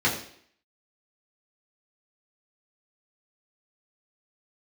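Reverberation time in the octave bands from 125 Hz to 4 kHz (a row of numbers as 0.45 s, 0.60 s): 0.50 s, 0.65 s, 0.60 s, 0.60 s, 0.60 s, 0.60 s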